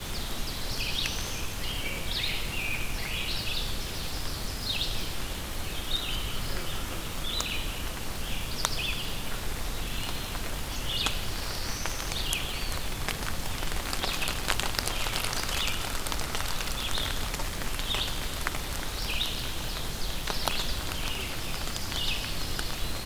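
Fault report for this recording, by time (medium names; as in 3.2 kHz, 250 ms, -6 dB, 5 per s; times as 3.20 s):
crackle 330 per s -34 dBFS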